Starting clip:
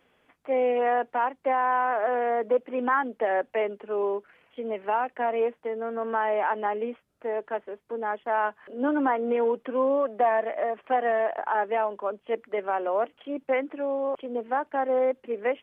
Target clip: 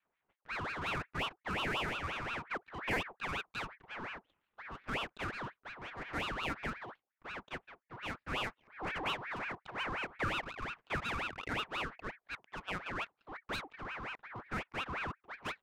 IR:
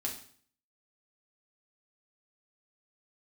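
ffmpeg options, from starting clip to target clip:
-af "highpass=f=160:t=q:w=0.5412,highpass=f=160:t=q:w=1.307,lowpass=f=2900:t=q:w=0.5176,lowpass=f=2900:t=q:w=0.7071,lowpass=f=2900:t=q:w=1.932,afreqshift=-53,adynamicsmooth=sensitivity=8:basefreq=660,equalizer=f=350:t=o:w=1.5:g=-10,aeval=exprs='val(0)*sin(2*PI*1300*n/s+1300*0.6/5.6*sin(2*PI*5.6*n/s))':c=same,volume=0.501"

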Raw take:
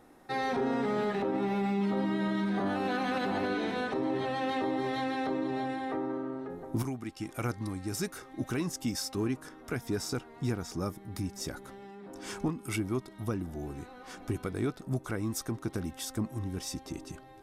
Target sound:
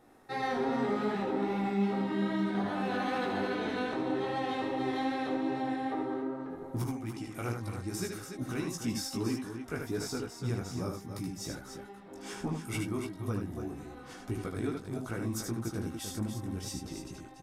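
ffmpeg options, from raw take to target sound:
-filter_complex "[0:a]flanger=delay=16:depth=4.1:speed=2.5,asplit=2[s0][s1];[s1]aecho=0:1:75.8|288.6:0.562|0.398[s2];[s0][s2]amix=inputs=2:normalize=0"

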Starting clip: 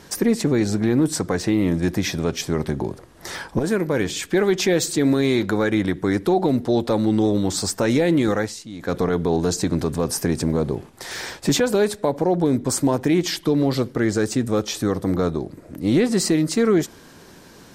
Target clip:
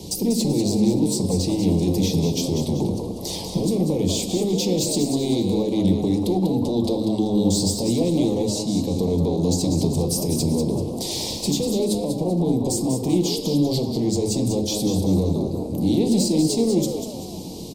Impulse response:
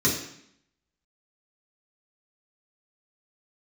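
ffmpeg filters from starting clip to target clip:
-filter_complex "[0:a]acrossover=split=120|460[s0][s1][s2];[s0]acompressor=threshold=0.0178:ratio=4[s3];[s1]acompressor=threshold=0.0398:ratio=4[s4];[s2]acompressor=threshold=0.0355:ratio=4[s5];[s3][s4][s5]amix=inputs=3:normalize=0,alimiter=limit=0.0891:level=0:latency=1:release=169,asoftclip=type=tanh:threshold=0.0473,asuperstop=centerf=1500:order=4:qfactor=0.54,asplit=5[s6][s7][s8][s9][s10];[s7]adelay=193,afreqshift=100,volume=0.422[s11];[s8]adelay=386,afreqshift=200,volume=0.164[s12];[s9]adelay=579,afreqshift=300,volume=0.0638[s13];[s10]adelay=772,afreqshift=400,volume=0.0251[s14];[s6][s11][s12][s13][s14]amix=inputs=5:normalize=0,asplit=2[s15][s16];[1:a]atrim=start_sample=2205,asetrate=32634,aresample=44100[s17];[s16][s17]afir=irnorm=-1:irlink=0,volume=0.0891[s18];[s15][s18]amix=inputs=2:normalize=0,volume=2.66"

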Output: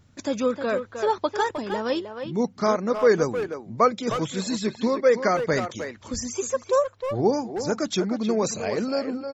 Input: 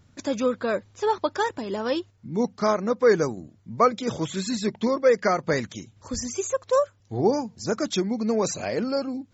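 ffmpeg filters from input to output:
-filter_complex "[0:a]asplit=2[s0][s1];[s1]adelay=310,highpass=300,lowpass=3400,asoftclip=type=hard:threshold=0.15,volume=0.447[s2];[s0][s2]amix=inputs=2:normalize=0"

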